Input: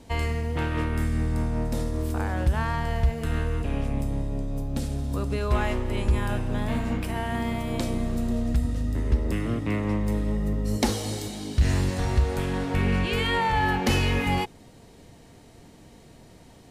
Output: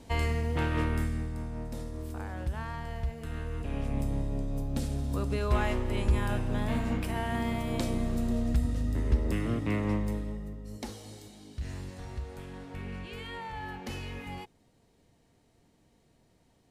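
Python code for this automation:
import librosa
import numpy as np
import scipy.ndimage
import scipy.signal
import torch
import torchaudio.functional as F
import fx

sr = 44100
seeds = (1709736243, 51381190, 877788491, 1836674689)

y = fx.gain(x, sr, db=fx.line((0.91, -2.0), (1.33, -10.5), (3.36, -10.5), (4.02, -3.0), (9.94, -3.0), (10.6, -16.0)))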